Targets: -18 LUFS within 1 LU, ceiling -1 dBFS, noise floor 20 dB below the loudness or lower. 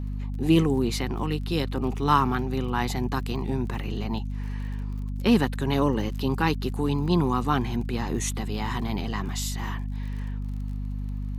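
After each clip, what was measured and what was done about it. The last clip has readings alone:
ticks 35/s; hum 50 Hz; harmonics up to 250 Hz; hum level -28 dBFS; loudness -27.0 LUFS; peak -7.0 dBFS; loudness target -18.0 LUFS
-> de-click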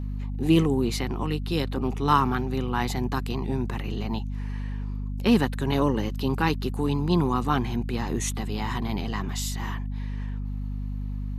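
ticks 0.088/s; hum 50 Hz; harmonics up to 250 Hz; hum level -28 dBFS
-> de-hum 50 Hz, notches 5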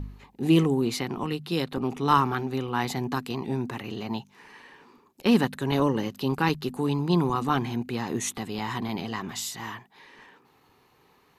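hum none; loudness -27.5 LUFS; peak -7.5 dBFS; loudness target -18.0 LUFS
-> gain +9.5 dB; limiter -1 dBFS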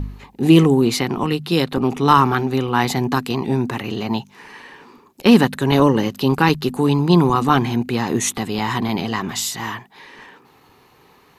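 loudness -18.0 LUFS; peak -1.0 dBFS; noise floor -52 dBFS

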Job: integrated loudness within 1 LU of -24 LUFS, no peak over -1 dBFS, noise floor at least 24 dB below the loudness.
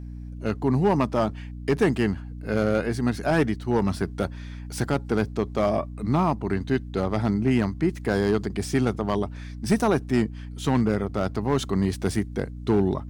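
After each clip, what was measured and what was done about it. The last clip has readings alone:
clipped 0.7%; flat tops at -13.5 dBFS; hum 60 Hz; harmonics up to 300 Hz; hum level -34 dBFS; loudness -25.5 LUFS; peak -13.5 dBFS; loudness target -24.0 LUFS
-> clip repair -13.5 dBFS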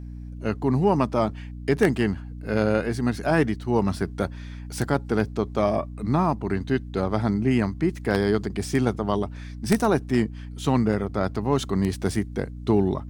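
clipped 0.0%; hum 60 Hz; harmonics up to 300 Hz; hum level -34 dBFS
-> de-hum 60 Hz, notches 5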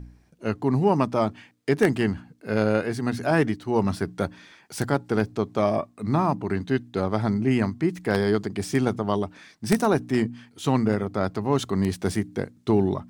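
hum none; loudness -25.0 LUFS; peak -4.5 dBFS; loudness target -24.0 LUFS
-> gain +1 dB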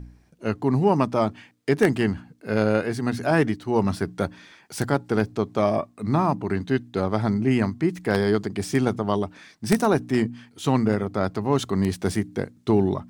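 loudness -24.0 LUFS; peak -3.5 dBFS; noise floor -57 dBFS

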